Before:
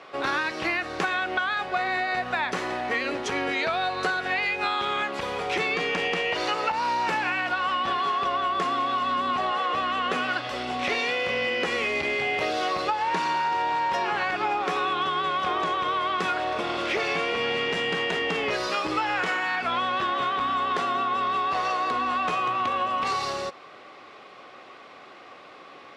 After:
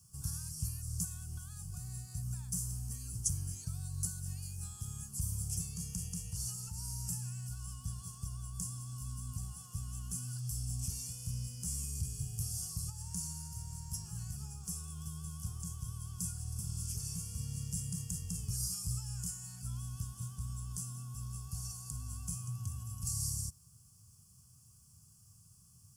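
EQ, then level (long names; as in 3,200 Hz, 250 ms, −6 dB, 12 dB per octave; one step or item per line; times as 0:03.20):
inverse Chebyshev band-stop filter 290–4,100 Hz, stop band 50 dB
parametric band 4,700 Hz +8.5 dB 1.2 octaves
high-shelf EQ 8,200 Hz +8 dB
+13.0 dB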